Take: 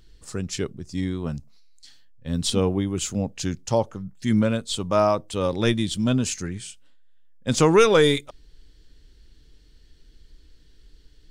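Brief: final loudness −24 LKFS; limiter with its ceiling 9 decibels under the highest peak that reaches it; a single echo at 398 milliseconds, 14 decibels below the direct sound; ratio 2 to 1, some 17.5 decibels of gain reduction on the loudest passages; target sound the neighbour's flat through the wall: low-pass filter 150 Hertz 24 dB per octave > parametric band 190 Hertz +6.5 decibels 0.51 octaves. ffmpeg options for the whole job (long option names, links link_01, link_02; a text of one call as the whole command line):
ffmpeg -i in.wav -af "acompressor=threshold=-46dB:ratio=2,alimiter=level_in=8dB:limit=-24dB:level=0:latency=1,volume=-8dB,lowpass=frequency=150:width=0.5412,lowpass=frequency=150:width=1.3066,equalizer=frequency=190:width_type=o:width=0.51:gain=6.5,aecho=1:1:398:0.2,volume=25dB" out.wav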